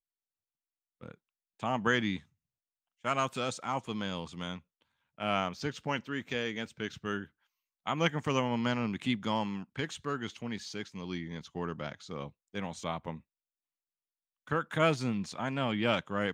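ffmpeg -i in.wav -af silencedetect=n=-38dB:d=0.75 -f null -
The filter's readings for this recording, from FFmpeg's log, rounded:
silence_start: 0.00
silence_end: 1.03 | silence_duration: 1.03
silence_start: 2.17
silence_end: 3.05 | silence_duration: 0.88
silence_start: 13.17
silence_end: 14.51 | silence_duration: 1.34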